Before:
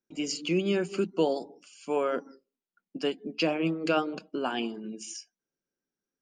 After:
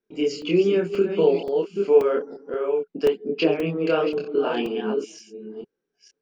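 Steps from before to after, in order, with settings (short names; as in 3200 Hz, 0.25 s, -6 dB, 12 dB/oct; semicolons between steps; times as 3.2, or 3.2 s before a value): reverse delay 0.468 s, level -8 dB; LPF 3700 Hz 12 dB/oct; bell 430 Hz +14.5 dB 0.28 oct; compressor 1.5:1, threshold -27 dBFS, peak gain reduction 5.5 dB; chorus voices 4, 1.1 Hz, delay 26 ms, depth 3.7 ms; crackling interface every 0.53 s, samples 128, zero, from 0.42; gain +8 dB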